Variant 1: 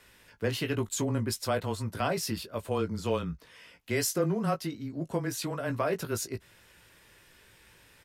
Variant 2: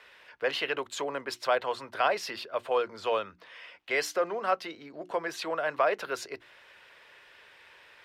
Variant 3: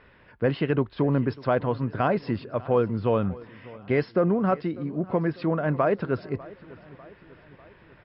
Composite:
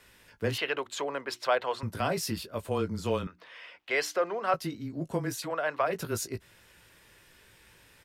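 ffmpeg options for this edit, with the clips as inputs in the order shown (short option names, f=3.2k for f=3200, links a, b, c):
-filter_complex "[1:a]asplit=3[a][b][c];[0:a]asplit=4[d][e][f][g];[d]atrim=end=0.582[h];[a]atrim=start=0.578:end=1.832[i];[e]atrim=start=1.828:end=3.272[j];[b]atrim=start=3.268:end=4.542[k];[f]atrim=start=4.538:end=5.56[l];[c]atrim=start=5.32:end=6.01[m];[g]atrim=start=5.77[n];[h][i]acrossfade=d=0.004:c1=hsin:c2=hsin[o];[o][j]acrossfade=d=0.004:c1=hsin:c2=hsin[p];[p][k]acrossfade=d=0.004:c1=hsin:c2=hsin[q];[q][l]acrossfade=d=0.004:c1=hsin:c2=hsin[r];[r][m]acrossfade=d=0.24:c1=tri:c2=tri[s];[s][n]acrossfade=d=0.24:c1=tri:c2=tri"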